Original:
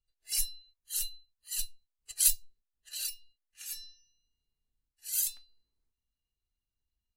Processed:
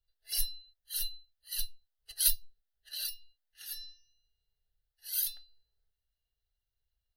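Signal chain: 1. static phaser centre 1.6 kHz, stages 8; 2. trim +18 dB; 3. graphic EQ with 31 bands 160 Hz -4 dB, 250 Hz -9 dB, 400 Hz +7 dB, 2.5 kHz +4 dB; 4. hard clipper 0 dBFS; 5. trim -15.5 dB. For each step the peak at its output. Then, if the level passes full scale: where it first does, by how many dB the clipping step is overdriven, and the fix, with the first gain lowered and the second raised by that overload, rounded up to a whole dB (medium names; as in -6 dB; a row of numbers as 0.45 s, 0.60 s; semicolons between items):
-14.5 dBFS, +3.5 dBFS, +3.5 dBFS, 0.0 dBFS, -15.5 dBFS; step 2, 3.5 dB; step 2 +14 dB, step 5 -11.5 dB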